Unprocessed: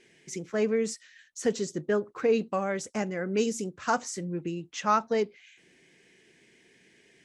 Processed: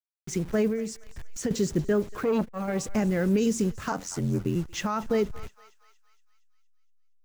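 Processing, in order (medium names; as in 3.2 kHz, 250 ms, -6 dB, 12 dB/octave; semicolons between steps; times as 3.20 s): send-on-delta sampling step -45 dBFS; 0.67–1.51 s: compression 4:1, threshold -35 dBFS, peak gain reduction 12.5 dB; thinning echo 233 ms, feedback 59%, high-pass 1.1 kHz, level -19.5 dB; peak limiter -22.5 dBFS, peak gain reduction 11 dB; bass shelf 95 Hz +8.5 dB; 3.91–4.56 s: ring modulator 44 Hz; bass shelf 210 Hz +10 dB; 2.15–2.81 s: transformer saturation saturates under 480 Hz; trim +3 dB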